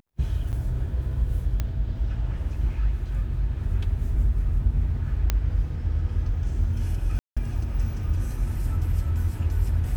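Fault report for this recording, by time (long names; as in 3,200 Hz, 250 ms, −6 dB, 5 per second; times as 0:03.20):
0:00.52–0:00.53: drop-out 8.7 ms
0:01.60: click −14 dBFS
0:05.30: click −9 dBFS
0:07.19–0:07.37: drop-out 176 ms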